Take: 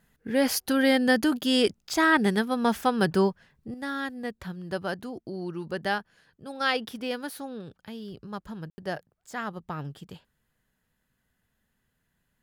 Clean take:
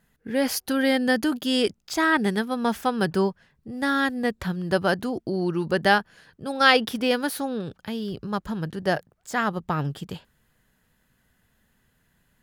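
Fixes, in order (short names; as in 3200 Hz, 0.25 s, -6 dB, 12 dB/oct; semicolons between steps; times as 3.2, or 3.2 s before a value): room tone fill 8.7–8.78; gain correction +9 dB, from 3.74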